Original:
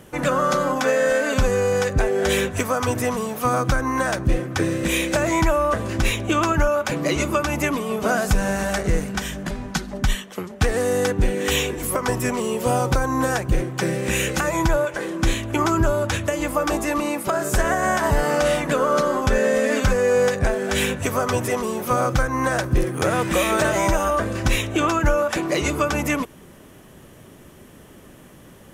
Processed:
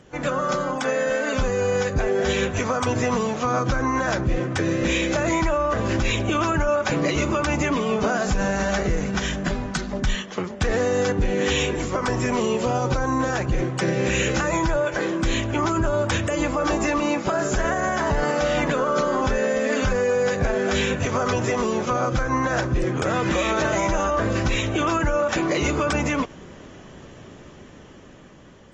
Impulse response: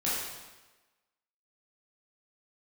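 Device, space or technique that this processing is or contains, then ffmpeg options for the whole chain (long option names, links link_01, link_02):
low-bitrate web radio: -af "dynaudnorm=framelen=530:gausssize=7:maxgain=14dB,alimiter=limit=-9.5dB:level=0:latency=1:release=60,volume=-4.5dB" -ar 32000 -c:a aac -b:a 24k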